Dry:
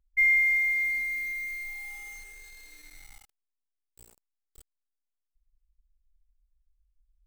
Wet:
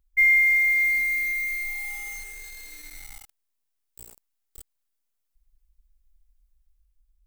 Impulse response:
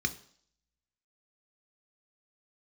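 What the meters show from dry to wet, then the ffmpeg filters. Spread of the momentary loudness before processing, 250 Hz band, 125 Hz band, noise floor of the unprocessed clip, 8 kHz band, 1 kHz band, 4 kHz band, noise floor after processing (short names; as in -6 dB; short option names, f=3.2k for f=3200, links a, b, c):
21 LU, +6.0 dB, +6.0 dB, -84 dBFS, +9.0 dB, +6.0 dB, +7.0 dB, -77 dBFS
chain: -af "highshelf=f=9.5k:g=7,dynaudnorm=f=280:g=5:m=3dB,volume=3.5dB"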